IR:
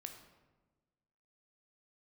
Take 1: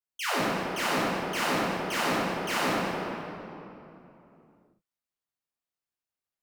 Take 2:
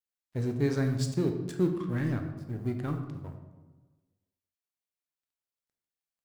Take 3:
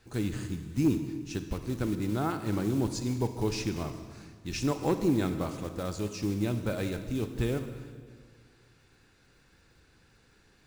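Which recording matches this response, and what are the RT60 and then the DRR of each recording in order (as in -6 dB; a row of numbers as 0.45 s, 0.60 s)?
2; 3.0 s, 1.3 s, 1.9 s; -9.5 dB, 4.5 dB, 8.5 dB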